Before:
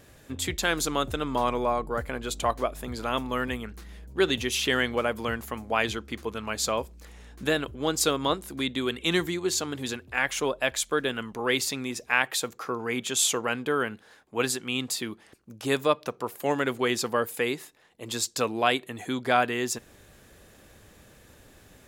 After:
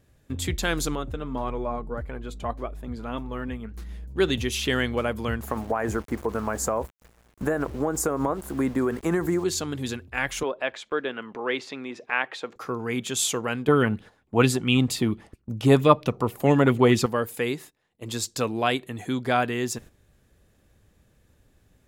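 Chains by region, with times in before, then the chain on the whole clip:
0:00.95–0:03.74: high-shelf EQ 3,200 Hz −11.5 dB + flanger 1.7 Hz, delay 2 ms, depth 3.1 ms, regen +58%
0:05.43–0:09.44: drawn EQ curve 120 Hz 0 dB, 770 Hz +11 dB, 1,700 Hz +6 dB, 3,500 Hz −23 dB, 6,800 Hz +3 dB + centre clipping without the shift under −40.5 dBFS + downward compressor 5 to 1, threshold −21 dBFS
0:10.43–0:12.56: upward compression, threshold −29 dBFS + band-pass filter 340–2,800 Hz
0:13.68–0:17.06: low-shelf EQ 390 Hz +11 dB + notch filter 1,600 Hz, Q 14 + auto-filter bell 4.4 Hz 680–3,200 Hz +11 dB
whole clip: noise gate −44 dBFS, range −12 dB; low-shelf EQ 220 Hz +11 dB; level −1.5 dB

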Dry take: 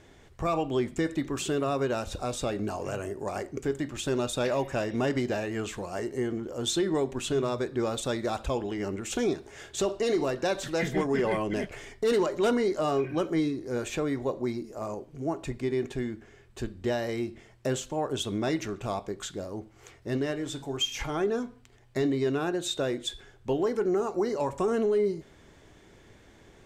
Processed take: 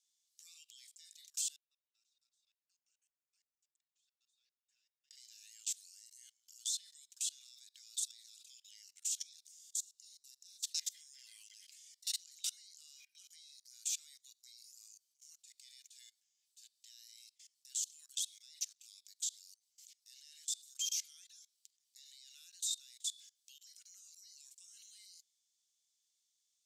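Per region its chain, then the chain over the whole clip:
0:01.56–0:05.11: downward compressor 8 to 1, threshold −30 dBFS + pair of resonant band-passes 340 Hz, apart 0.72 octaves + comb filter 6 ms, depth 81%
0:09.48–0:10.64: parametric band 2,000 Hz −12.5 dB 2.4 octaves + downward compressor 3 to 1, threshold −41 dBFS + flutter between parallel walls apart 7.8 metres, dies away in 0.28 s
whole clip: inverse Chebyshev high-pass filter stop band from 780 Hz, stop band 80 dB; output level in coarse steps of 23 dB; level +10 dB

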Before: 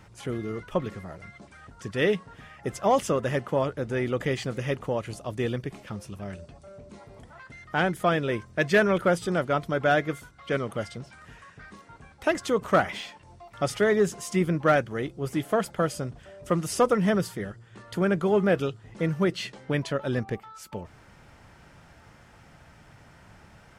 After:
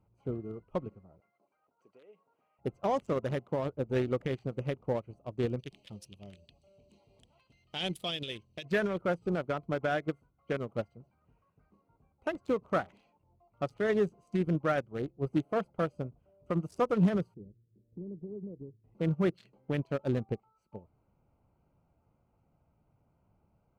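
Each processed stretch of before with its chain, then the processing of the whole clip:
0:01.20–0:02.59: high-pass filter 500 Hz + dynamic equaliser 2,800 Hz, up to +3 dB, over −41 dBFS, Q 0.87 + downward compressor 10 to 1, threshold −33 dBFS
0:05.59–0:08.65: high shelf with overshoot 2,200 Hz +13 dB, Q 3 + one half of a high-frequency compander encoder only
0:17.34–0:18.84: inverse Chebyshev low-pass filter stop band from 1,400 Hz, stop band 60 dB + downward compressor 4 to 1, threshold −31 dBFS
whole clip: adaptive Wiener filter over 25 samples; brickwall limiter −21.5 dBFS; expander for the loud parts 2.5 to 1, over −39 dBFS; level +4.5 dB

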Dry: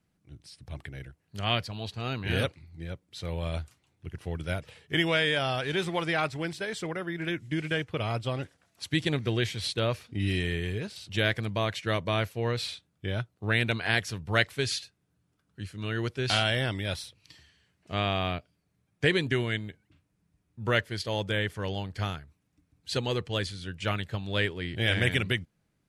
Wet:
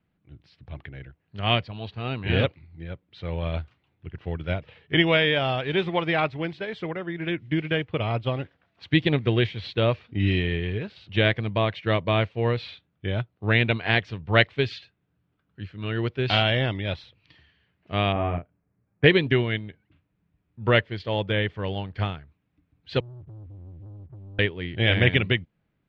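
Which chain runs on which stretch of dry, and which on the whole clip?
0:18.12–0:19.04: Gaussian smoothing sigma 4.5 samples + double-tracking delay 35 ms −4 dB
0:23.00–0:24.39: inverse Chebyshev low-pass filter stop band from 530 Hz, stop band 60 dB + downward compressor, threshold −45 dBFS + leveller curve on the samples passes 3
whole clip: low-pass filter 3,400 Hz 24 dB per octave; dynamic equaliser 1,500 Hz, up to −5 dB, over −45 dBFS, Q 2.5; expander for the loud parts 1.5 to 1, over −37 dBFS; level +9 dB

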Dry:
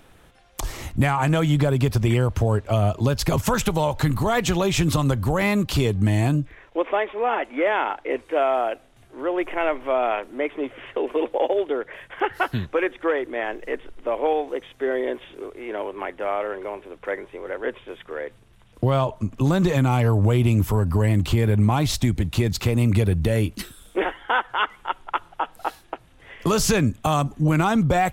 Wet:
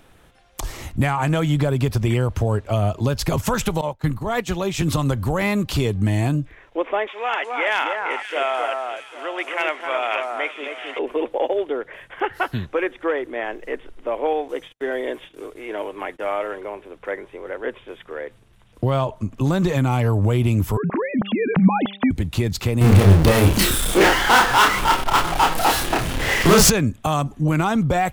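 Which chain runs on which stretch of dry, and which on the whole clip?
0:03.81–0:04.82: downward expander −19 dBFS + multiband upward and downward expander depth 70%
0:07.07–0:10.99: meter weighting curve ITU-R 468 + hard clipping −11 dBFS + delay that swaps between a low-pass and a high-pass 265 ms, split 1,700 Hz, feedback 51%, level −3.5 dB
0:14.48–0:16.61: noise gate −45 dBFS, range −37 dB + high-shelf EQ 3,900 Hz +8 dB + comb filter 6.5 ms, depth 31%
0:20.77–0:22.11: three sine waves on the formant tracks + hum removal 198.5 Hz, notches 4
0:22.81–0:26.70: power curve on the samples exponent 0.35 + double-tracking delay 31 ms −2.5 dB
whole clip: no processing

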